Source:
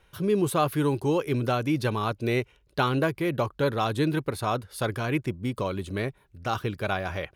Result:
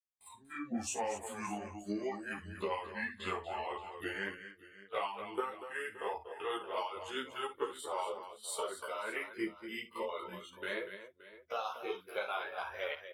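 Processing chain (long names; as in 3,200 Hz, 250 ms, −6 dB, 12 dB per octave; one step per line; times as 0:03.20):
pitch glide at a constant tempo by −6.5 semitones ending unshifted
noise reduction from a noise print of the clip's start 20 dB
noise gate with hold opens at −59 dBFS
high-shelf EQ 3,800 Hz −2.5 dB
mains-hum notches 50/100/150 Hz
harmonic and percussive parts rebalanced harmonic −15 dB
low-shelf EQ 270 Hz −7 dB
downward compressor 6 to 1, threshold −35 dBFS, peak gain reduction 11 dB
tempo change 0.56×
multi-tap delay 54/239/573 ms −11.5/−10.5/−17 dB
string-ensemble chorus
level +4 dB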